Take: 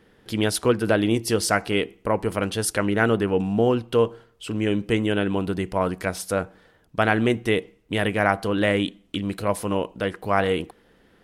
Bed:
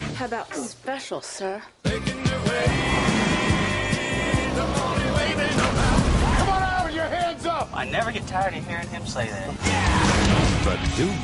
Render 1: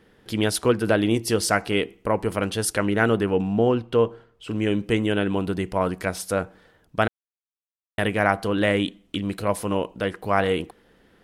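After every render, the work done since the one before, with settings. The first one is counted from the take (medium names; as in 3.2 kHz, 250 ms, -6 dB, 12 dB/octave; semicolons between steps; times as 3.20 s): 3.36–4.48 s: treble shelf 8.3 kHz -> 4.1 kHz -12 dB; 7.08–7.98 s: mute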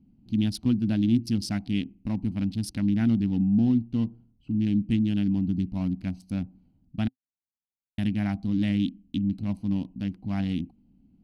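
local Wiener filter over 25 samples; FFT filter 120 Hz 0 dB, 260 Hz +5 dB, 450 Hz -29 dB, 760 Hz -16 dB, 1.2 kHz -24 dB, 2.5 kHz -10 dB, 5.2 kHz -3 dB, 7.4 kHz -14 dB, 14 kHz -12 dB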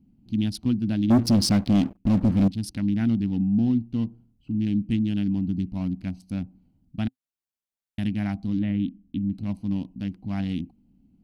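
1.10–2.48 s: waveshaping leveller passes 3; 8.59–9.35 s: distance through air 430 m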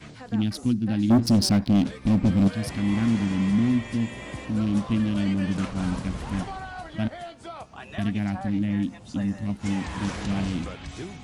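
add bed -14 dB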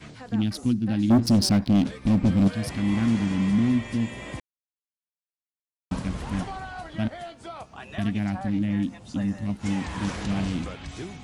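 4.40–5.91 s: mute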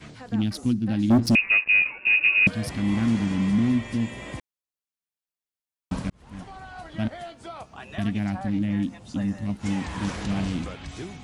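1.35–2.47 s: frequency inversion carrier 2.7 kHz; 6.10–7.06 s: fade in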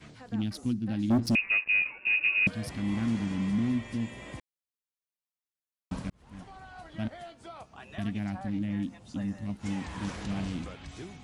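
trim -6.5 dB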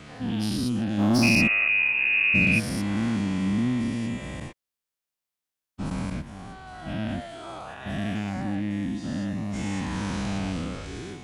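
every event in the spectrogram widened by 240 ms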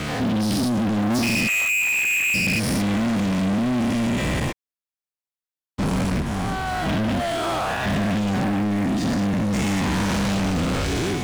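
compression 4:1, threshold -28 dBFS, peak gain reduction 10.5 dB; waveshaping leveller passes 5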